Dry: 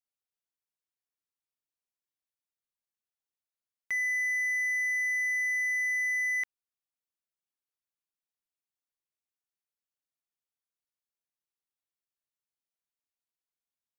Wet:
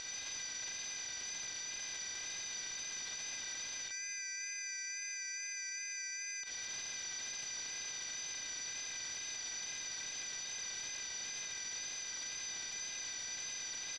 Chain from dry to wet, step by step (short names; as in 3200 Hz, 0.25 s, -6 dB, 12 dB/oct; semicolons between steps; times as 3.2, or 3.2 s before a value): per-bin compression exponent 0.2; recorder AGC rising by 51 dB/s; small resonant body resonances 3700 Hz, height 17 dB, ringing for 95 ms; on a send at -10 dB: reverb RT60 2.4 s, pre-delay 4 ms; on the sum: harmoniser -4 st -6 dB, +3 st -7 dB, +4 st -17 dB; wow and flutter 25 cents; EQ curve 920 Hz 0 dB, 2100 Hz -13 dB, 3300 Hz +10 dB, 6000 Hz +14 dB, 12000 Hz -21 dB; limiter -34.5 dBFS, peak gain reduction 15.5 dB; bell 7500 Hz -2 dB 0.23 oct